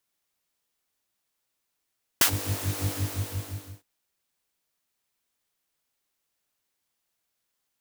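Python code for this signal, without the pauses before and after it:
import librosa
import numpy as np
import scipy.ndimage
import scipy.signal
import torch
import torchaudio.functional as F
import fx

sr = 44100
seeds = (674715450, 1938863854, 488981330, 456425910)

y = fx.sub_patch_wobble(sr, seeds[0], note=43, wave='triangle', wave2='saw', interval_st=0, level2_db=-17.0, sub_db=-15.0, noise_db=-13.0, kind='highpass', cutoff_hz=180.0, q=1.1, env_oct=2.5, env_decay_s=0.12, env_sustain_pct=20, attack_ms=3.6, decay_s=0.09, sustain_db=-19, release_s=0.99, note_s=0.63, lfo_hz=5.8, wobble_oct=1.1)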